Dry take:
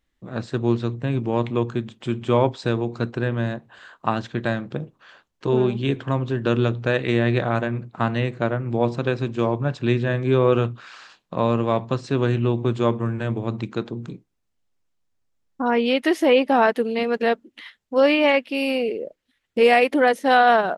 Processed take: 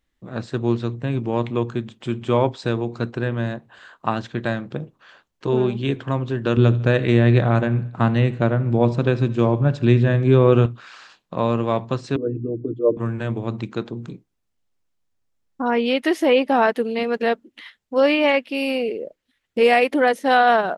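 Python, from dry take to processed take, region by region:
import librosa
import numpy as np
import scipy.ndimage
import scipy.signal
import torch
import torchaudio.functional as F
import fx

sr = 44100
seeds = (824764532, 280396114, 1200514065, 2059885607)

y = fx.chain(x, sr, fx.low_shelf(hz=310.0, db=8.0),
    fx.echo_feedback(ms=75, feedback_pct=50, wet_db=-18.5), at=(6.57, 10.66))
y = fx.chain(y, sr, fx.envelope_sharpen(power=3.0),
    fx.highpass(hz=220.0, slope=12),
    fx.comb(ms=6.7, depth=0.97), at=(12.16, 12.97))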